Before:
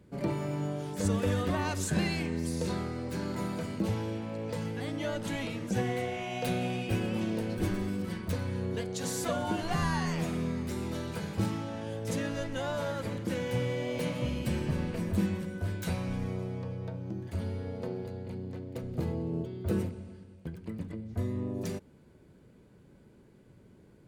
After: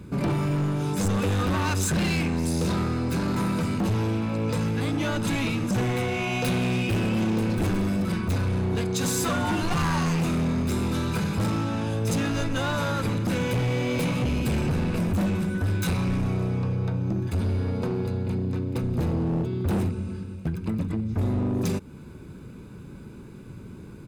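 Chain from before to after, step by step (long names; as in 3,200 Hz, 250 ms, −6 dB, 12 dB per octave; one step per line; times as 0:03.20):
comb filter 0.8 ms, depth 51%
in parallel at +2 dB: downward compressor, threshold −42 dBFS, peak gain reduction 19 dB
on the sum: hard clipping −28 dBFS, distortion −9 dB
level +6.5 dB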